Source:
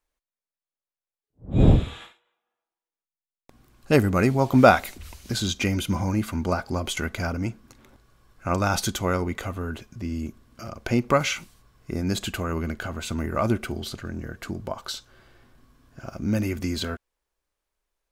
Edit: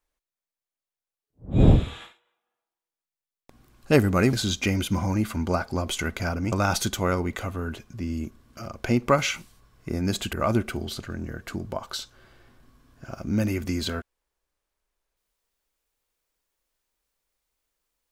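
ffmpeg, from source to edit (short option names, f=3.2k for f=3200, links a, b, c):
-filter_complex "[0:a]asplit=4[a][b][c][d];[a]atrim=end=4.332[e];[b]atrim=start=5.308:end=7.502[f];[c]atrim=start=8.538:end=12.352[g];[d]atrim=start=13.278[h];[e][f]acrossfade=d=0.004:c1=hsin:c2=hsin[i];[i][g]acrossfade=d=0.004:c1=hsin:c2=hsin[j];[j][h]acrossfade=d=0.004:c1=hsin:c2=hsin"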